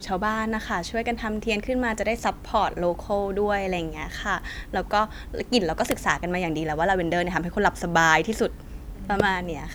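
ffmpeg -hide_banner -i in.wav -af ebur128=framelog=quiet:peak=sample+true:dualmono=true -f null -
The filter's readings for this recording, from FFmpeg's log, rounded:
Integrated loudness:
  I:         -22.0 LUFS
  Threshold: -32.1 LUFS
Loudness range:
  LRA:         3.1 LU
  Threshold: -42.2 LUFS
  LRA low:   -23.4 LUFS
  LRA high:  -20.3 LUFS
Sample peak:
  Peak:       -3.8 dBFS
True peak:
  Peak:       -3.8 dBFS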